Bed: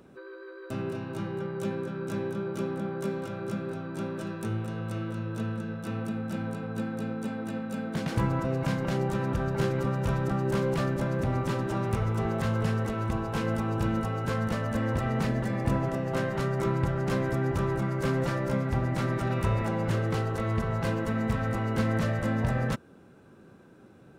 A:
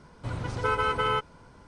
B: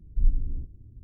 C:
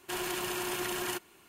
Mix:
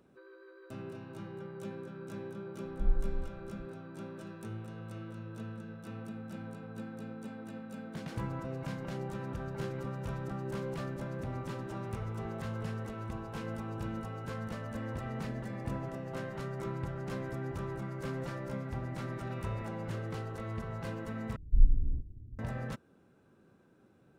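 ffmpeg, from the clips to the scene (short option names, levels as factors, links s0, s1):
-filter_complex "[2:a]asplit=2[s0][s1];[0:a]volume=0.299[s2];[s0]asubboost=boost=10.5:cutoff=74[s3];[s1]bass=f=250:g=1,treble=f=4000:g=-13[s4];[s2]asplit=2[s5][s6];[s5]atrim=end=21.364[s7];[s4]atrim=end=1.03,asetpts=PTS-STARTPTS,volume=0.841[s8];[s6]atrim=start=22.386[s9];[s3]atrim=end=1.03,asetpts=PTS-STARTPTS,volume=0.266,afade=t=in:d=0.004:c=hsin,afade=t=out:st=1.026:d=0.004:c=hsin,adelay=2630[s10];[s7][s8]acrossfade=d=0.004:c1=hsin:c2=hsin[s11];[s11][s9]acrossfade=d=0.004:c1=hsin:c2=hsin[s12];[s12][s10]amix=inputs=2:normalize=0"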